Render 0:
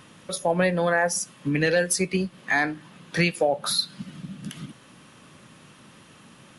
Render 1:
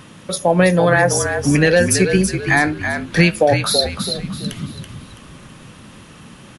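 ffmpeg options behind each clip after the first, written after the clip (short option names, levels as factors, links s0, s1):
-filter_complex "[0:a]lowshelf=f=270:g=5,asplit=5[s0][s1][s2][s3][s4];[s1]adelay=330,afreqshift=-46,volume=0.447[s5];[s2]adelay=660,afreqshift=-92,volume=0.16[s6];[s3]adelay=990,afreqshift=-138,volume=0.0582[s7];[s4]adelay=1320,afreqshift=-184,volume=0.0209[s8];[s0][s5][s6][s7][s8]amix=inputs=5:normalize=0,volume=2.24"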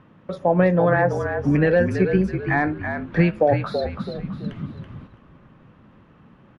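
-af "lowpass=1500,agate=range=0.501:threshold=0.0141:ratio=16:detection=peak,volume=0.668"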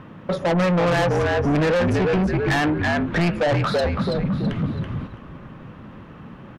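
-filter_complex "[0:a]asplit=2[s0][s1];[s1]alimiter=limit=0.158:level=0:latency=1:release=131,volume=1.19[s2];[s0][s2]amix=inputs=2:normalize=0,asoftclip=type=tanh:threshold=0.0891,volume=1.58"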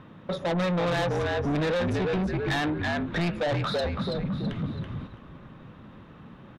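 -af "equalizer=f=3700:w=7.6:g=9.5,volume=0.447"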